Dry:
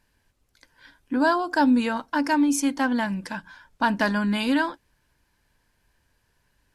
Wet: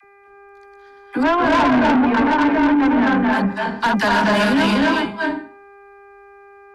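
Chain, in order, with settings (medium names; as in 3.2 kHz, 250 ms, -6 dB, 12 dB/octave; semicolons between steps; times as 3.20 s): chunks repeated in reverse 228 ms, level -4 dB; 1.23–3.31 s: low-pass 2.1 kHz 24 dB/octave; mains buzz 400 Hz, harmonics 6, -42 dBFS -3 dB/octave; gate -28 dBFS, range -15 dB; phase dispersion lows, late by 47 ms, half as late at 510 Hz; reverberation RT60 0.45 s, pre-delay 232 ms, DRR -1.5 dB; saturation -19.5 dBFS, distortion -9 dB; trim +7.5 dB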